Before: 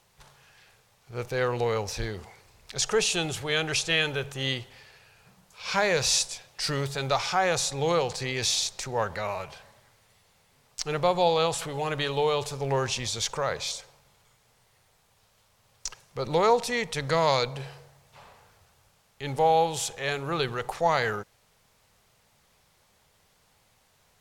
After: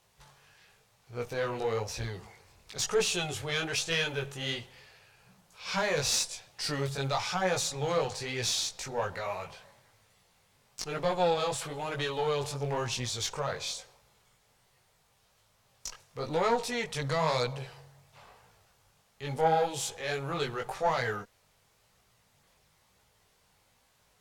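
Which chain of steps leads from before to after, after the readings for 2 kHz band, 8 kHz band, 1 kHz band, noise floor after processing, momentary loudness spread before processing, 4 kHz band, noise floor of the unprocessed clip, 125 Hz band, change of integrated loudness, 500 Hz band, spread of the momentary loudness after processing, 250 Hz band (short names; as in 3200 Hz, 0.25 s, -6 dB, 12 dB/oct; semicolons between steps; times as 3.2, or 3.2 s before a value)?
-4.5 dB, -4.0 dB, -5.0 dB, -68 dBFS, 14 LU, -4.5 dB, -65 dBFS, -3.5 dB, -4.5 dB, -4.5 dB, 13 LU, -4.0 dB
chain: one diode to ground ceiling -19 dBFS; chorus voices 2, 1 Hz, delay 19 ms, depth 3 ms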